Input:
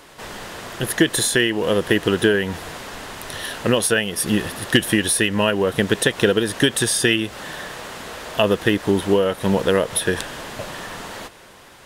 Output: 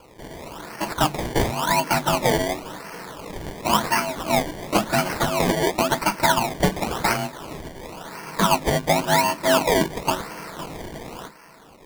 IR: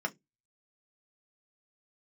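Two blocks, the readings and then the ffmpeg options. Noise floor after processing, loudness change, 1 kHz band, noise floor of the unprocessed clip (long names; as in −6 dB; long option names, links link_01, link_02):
−48 dBFS, −2.5 dB, +8.0 dB, −46 dBFS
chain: -filter_complex "[0:a]asuperstop=centerf=1100:order=4:qfactor=5.7,aeval=exprs='val(0)*sin(2*PI*460*n/s)':channel_layout=same[link_01];[1:a]atrim=start_sample=2205[link_02];[link_01][link_02]afir=irnorm=-1:irlink=0,acrusher=samples=23:mix=1:aa=0.000001:lfo=1:lforange=23:lforate=0.94,volume=-3.5dB"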